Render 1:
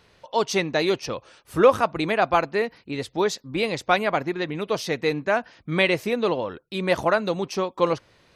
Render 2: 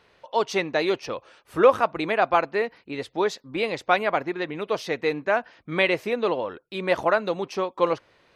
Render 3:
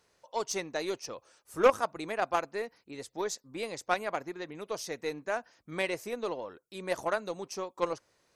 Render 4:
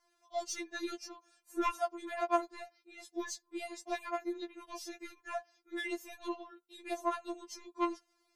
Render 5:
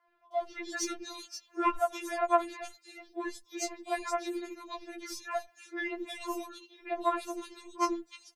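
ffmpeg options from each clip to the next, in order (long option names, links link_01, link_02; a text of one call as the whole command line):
ffmpeg -i in.wav -af "bass=frequency=250:gain=-8,treble=frequency=4000:gain=-8" out.wav
ffmpeg -i in.wav -af "highshelf=frequency=4700:width_type=q:width=1.5:gain=13,aeval=exprs='0.596*(cos(1*acos(clip(val(0)/0.596,-1,1)))-cos(1*PI/2))+0.119*(cos(3*acos(clip(val(0)/0.596,-1,1)))-cos(3*PI/2))+0.00473*(cos(6*acos(clip(val(0)/0.596,-1,1)))-cos(6*PI/2))':channel_layout=same,volume=-3dB" out.wav
ffmpeg -i in.wav -af "afftfilt=real='re*4*eq(mod(b,16),0)':imag='im*4*eq(mod(b,16),0)':win_size=2048:overlap=0.75,volume=-3dB" out.wav
ffmpeg -i in.wav -filter_complex "[0:a]acrossover=split=340|2800[link_01][link_02][link_03];[link_01]adelay=80[link_04];[link_03]adelay=310[link_05];[link_04][link_02][link_05]amix=inputs=3:normalize=0,volume=5.5dB" out.wav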